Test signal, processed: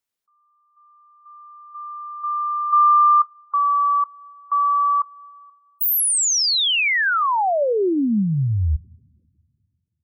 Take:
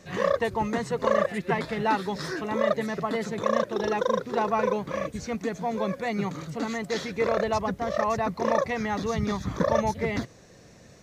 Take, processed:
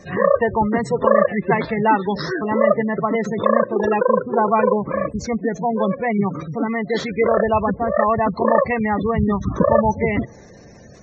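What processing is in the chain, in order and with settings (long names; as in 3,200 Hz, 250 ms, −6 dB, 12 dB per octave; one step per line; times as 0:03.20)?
coupled-rooms reverb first 0.21 s, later 2.3 s, from −21 dB, DRR 17.5 dB
gate on every frequency bin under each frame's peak −20 dB strong
level +8.5 dB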